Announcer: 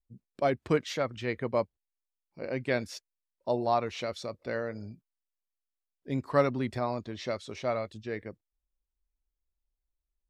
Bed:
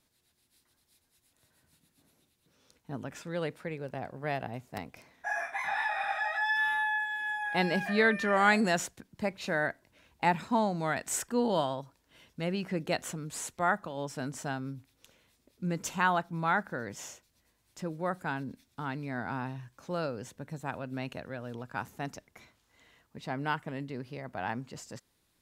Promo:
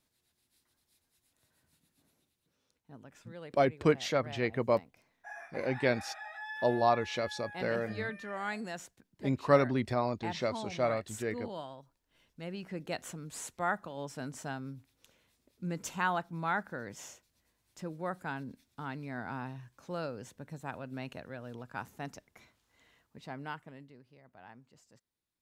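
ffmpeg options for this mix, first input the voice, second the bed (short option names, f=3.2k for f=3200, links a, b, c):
-filter_complex "[0:a]adelay=3150,volume=0.5dB[a];[1:a]volume=4.5dB,afade=t=out:st=2.05:d=0.67:silence=0.375837,afade=t=in:st=11.96:d=1.49:silence=0.354813,afade=t=out:st=22.9:d=1.1:silence=0.188365[b];[a][b]amix=inputs=2:normalize=0"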